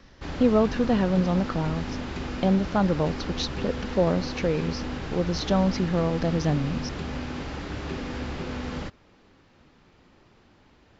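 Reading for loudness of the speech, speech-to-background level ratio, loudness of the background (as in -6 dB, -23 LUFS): -26.0 LUFS, 7.5 dB, -33.5 LUFS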